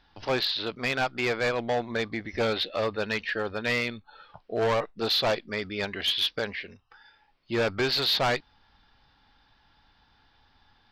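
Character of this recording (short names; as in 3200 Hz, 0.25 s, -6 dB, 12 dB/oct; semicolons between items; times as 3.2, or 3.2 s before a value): noise floor -65 dBFS; spectral tilt -1.5 dB/oct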